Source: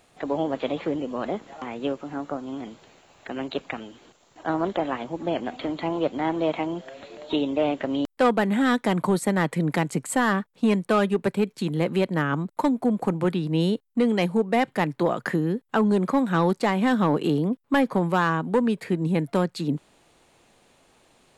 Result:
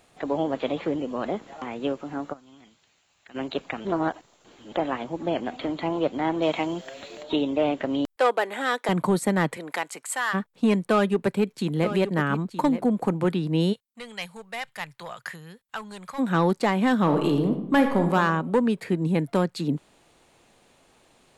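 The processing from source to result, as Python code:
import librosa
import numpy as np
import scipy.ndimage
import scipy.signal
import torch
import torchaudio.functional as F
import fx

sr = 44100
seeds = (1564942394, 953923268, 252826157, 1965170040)

y = fx.tone_stack(x, sr, knobs='5-5-5', at=(2.32, 3.34), fade=0.02)
y = fx.high_shelf(y, sr, hz=2900.0, db=10.0, at=(6.42, 7.23))
y = fx.highpass(y, sr, hz=400.0, slope=24, at=(8.16, 8.89))
y = fx.highpass(y, sr, hz=fx.line((9.55, 550.0), (10.33, 1200.0)), slope=12, at=(9.55, 10.33), fade=0.02)
y = fx.echo_single(y, sr, ms=924, db=-11.5, at=(10.91, 12.86))
y = fx.tone_stack(y, sr, knobs='10-0-10', at=(13.72, 16.18), fade=0.02)
y = fx.reverb_throw(y, sr, start_s=17.02, length_s=1.13, rt60_s=0.87, drr_db=5.0)
y = fx.edit(y, sr, fx.reverse_span(start_s=3.85, length_s=0.87), tone=tone)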